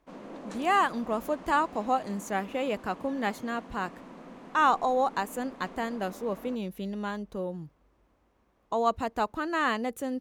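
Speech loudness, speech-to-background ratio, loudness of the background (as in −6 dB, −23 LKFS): −30.0 LKFS, 16.5 dB, −46.5 LKFS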